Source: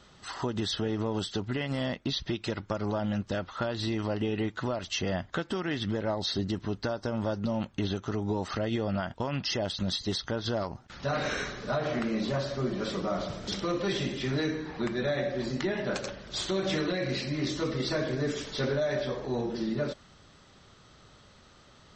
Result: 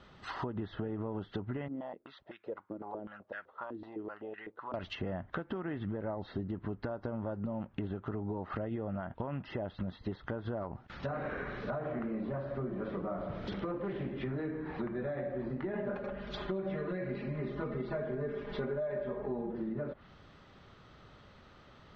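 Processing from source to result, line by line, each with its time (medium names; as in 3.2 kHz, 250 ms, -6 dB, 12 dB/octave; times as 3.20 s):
1.68–4.74 s: step-sequenced band-pass 7.9 Hz 300–1700 Hz
13.71–14.11 s: loudspeaker Doppler distortion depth 0.28 ms
15.73–19.52 s: comb 4.9 ms, depth 97%
whole clip: low-pass that closes with the level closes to 1.5 kHz, closed at -29 dBFS; low-pass 2.9 kHz 12 dB/octave; compression 5:1, threshold -34 dBFS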